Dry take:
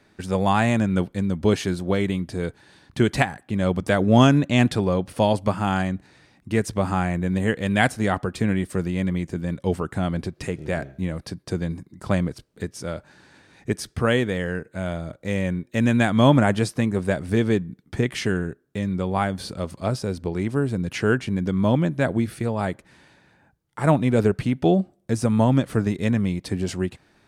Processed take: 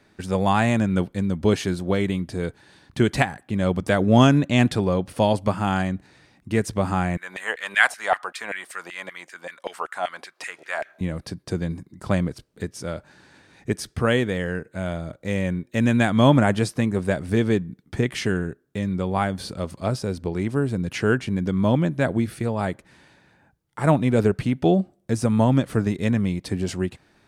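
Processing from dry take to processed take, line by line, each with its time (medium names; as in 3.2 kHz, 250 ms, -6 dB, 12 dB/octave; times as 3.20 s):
7.17–11.01 s: LFO high-pass saw down 5.2 Hz 630–2100 Hz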